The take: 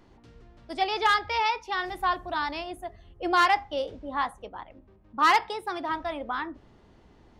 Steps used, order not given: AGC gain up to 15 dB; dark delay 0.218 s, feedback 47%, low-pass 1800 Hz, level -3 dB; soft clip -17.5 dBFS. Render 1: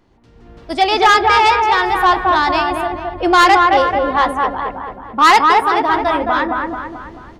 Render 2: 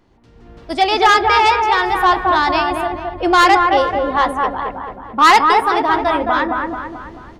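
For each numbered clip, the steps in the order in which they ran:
dark delay > soft clip > AGC; soft clip > dark delay > AGC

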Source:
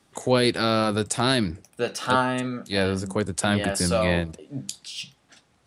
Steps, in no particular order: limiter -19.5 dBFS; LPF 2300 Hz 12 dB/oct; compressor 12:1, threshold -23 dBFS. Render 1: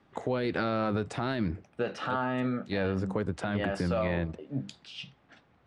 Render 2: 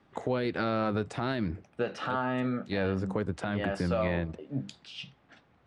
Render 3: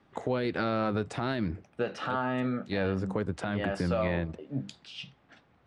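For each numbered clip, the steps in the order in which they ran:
LPF > limiter > compressor; compressor > LPF > limiter; LPF > compressor > limiter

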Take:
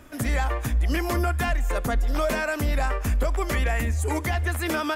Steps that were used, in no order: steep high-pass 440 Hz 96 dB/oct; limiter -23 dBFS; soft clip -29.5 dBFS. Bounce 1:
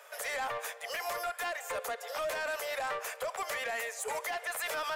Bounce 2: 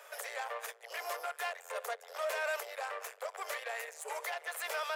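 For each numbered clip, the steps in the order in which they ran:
steep high-pass > limiter > soft clip; limiter > soft clip > steep high-pass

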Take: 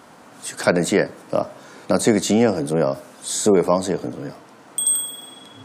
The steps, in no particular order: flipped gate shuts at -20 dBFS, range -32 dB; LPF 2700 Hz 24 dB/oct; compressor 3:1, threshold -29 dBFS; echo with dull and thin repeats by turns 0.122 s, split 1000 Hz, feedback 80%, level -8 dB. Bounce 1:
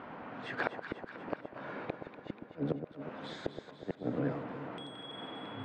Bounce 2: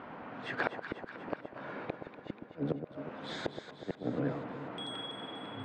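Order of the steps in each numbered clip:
compressor > LPF > flipped gate > echo with dull and thin repeats by turns; LPF > compressor > flipped gate > echo with dull and thin repeats by turns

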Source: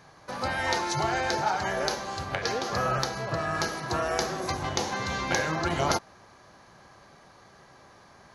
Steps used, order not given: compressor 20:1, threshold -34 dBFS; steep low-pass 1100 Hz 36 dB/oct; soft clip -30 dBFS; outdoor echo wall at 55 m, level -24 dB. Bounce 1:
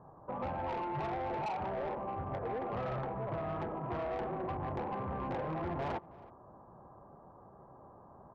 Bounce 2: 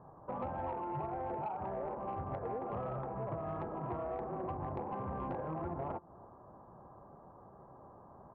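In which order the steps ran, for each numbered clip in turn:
steep low-pass > soft clip > outdoor echo > compressor; steep low-pass > compressor > outdoor echo > soft clip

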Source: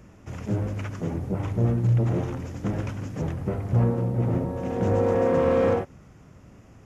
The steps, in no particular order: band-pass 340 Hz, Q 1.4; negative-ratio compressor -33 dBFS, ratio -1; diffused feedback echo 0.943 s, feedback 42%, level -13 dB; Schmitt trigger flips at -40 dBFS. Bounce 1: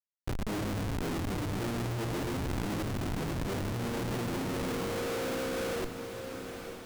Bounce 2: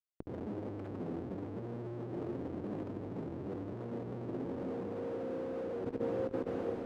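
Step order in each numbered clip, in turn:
band-pass > Schmitt trigger > diffused feedback echo > negative-ratio compressor; Schmitt trigger > diffused feedback echo > negative-ratio compressor > band-pass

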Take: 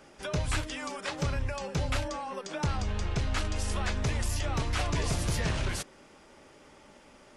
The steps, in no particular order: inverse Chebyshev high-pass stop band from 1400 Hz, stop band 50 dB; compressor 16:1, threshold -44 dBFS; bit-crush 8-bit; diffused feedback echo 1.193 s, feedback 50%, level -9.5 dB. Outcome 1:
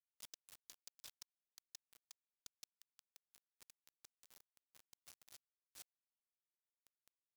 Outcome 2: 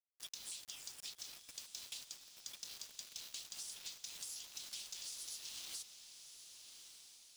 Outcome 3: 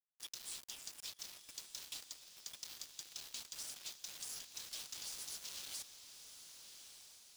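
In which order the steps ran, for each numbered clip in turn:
diffused feedback echo > compressor > inverse Chebyshev high-pass > bit-crush; inverse Chebyshev high-pass > bit-crush > compressor > diffused feedback echo; inverse Chebyshev high-pass > compressor > bit-crush > diffused feedback echo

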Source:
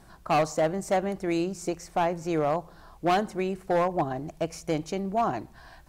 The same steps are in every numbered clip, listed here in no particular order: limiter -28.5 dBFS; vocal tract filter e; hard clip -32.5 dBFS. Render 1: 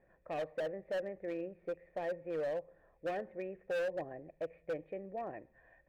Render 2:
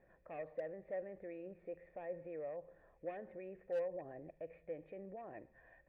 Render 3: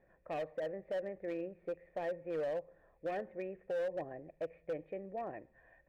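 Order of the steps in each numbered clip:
vocal tract filter > hard clip > limiter; limiter > vocal tract filter > hard clip; vocal tract filter > limiter > hard clip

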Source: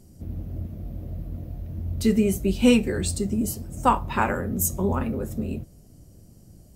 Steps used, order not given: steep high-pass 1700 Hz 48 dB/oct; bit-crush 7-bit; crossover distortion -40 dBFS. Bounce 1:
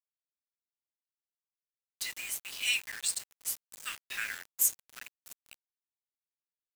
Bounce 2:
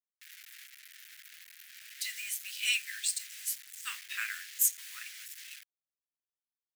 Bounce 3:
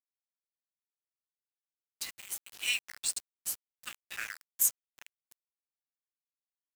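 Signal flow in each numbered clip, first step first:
crossover distortion > steep high-pass > bit-crush; crossover distortion > bit-crush > steep high-pass; steep high-pass > crossover distortion > bit-crush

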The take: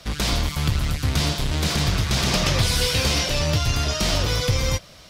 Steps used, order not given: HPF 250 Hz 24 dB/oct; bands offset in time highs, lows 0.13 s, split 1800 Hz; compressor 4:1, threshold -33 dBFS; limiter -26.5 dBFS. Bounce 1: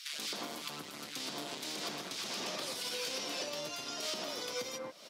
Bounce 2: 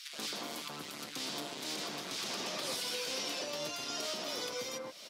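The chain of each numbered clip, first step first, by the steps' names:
bands offset in time > compressor > limiter > HPF; compressor > HPF > limiter > bands offset in time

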